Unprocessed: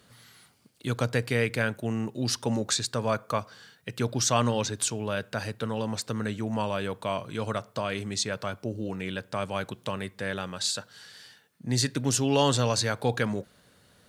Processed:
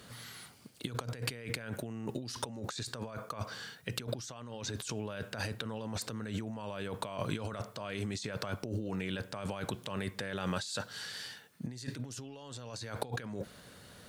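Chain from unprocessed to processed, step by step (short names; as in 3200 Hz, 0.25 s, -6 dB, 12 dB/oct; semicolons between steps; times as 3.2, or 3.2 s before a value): negative-ratio compressor -38 dBFS, ratio -1; gain -2 dB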